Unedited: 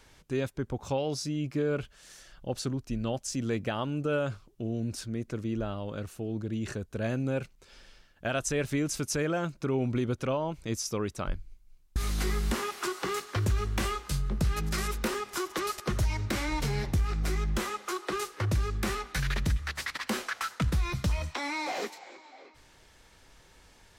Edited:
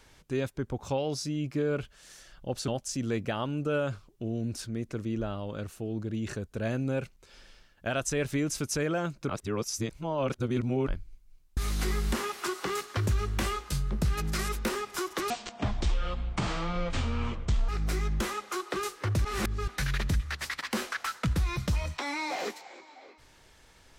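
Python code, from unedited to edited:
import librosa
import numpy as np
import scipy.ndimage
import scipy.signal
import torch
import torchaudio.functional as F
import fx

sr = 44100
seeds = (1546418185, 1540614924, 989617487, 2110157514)

y = fx.edit(x, sr, fx.cut(start_s=2.68, length_s=0.39),
    fx.reverse_span(start_s=9.68, length_s=1.58),
    fx.speed_span(start_s=15.69, length_s=1.36, speed=0.57),
    fx.reverse_span(start_s=18.61, length_s=0.43), tone=tone)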